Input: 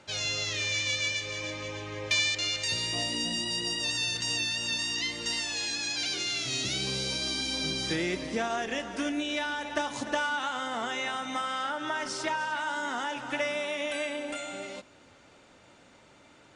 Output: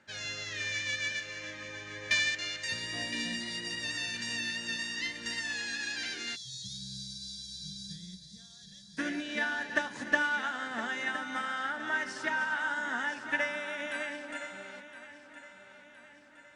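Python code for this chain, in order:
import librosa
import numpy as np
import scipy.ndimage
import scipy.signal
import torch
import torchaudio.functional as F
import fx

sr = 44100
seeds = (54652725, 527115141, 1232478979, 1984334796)

y = fx.peak_eq(x, sr, hz=1700.0, db=15.0, octaves=0.41)
y = fx.echo_feedback(y, sr, ms=1015, feedback_pct=54, wet_db=-10.0)
y = fx.spec_box(y, sr, start_s=6.36, length_s=2.62, low_hz=200.0, high_hz=3200.0, gain_db=-29)
y = fx.peak_eq(y, sr, hz=220.0, db=8.0, octaves=0.52)
y = fx.upward_expand(y, sr, threshold_db=-37.0, expansion=1.5)
y = y * librosa.db_to_amplitude(-3.5)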